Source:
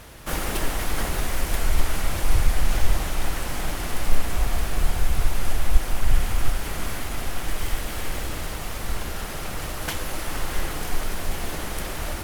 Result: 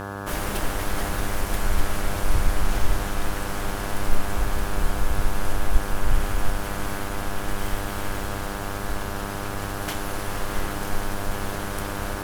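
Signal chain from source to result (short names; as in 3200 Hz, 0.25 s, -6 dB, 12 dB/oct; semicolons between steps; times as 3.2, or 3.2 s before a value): buzz 100 Hz, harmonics 17, -31 dBFS -2 dB/oct; gain -2 dB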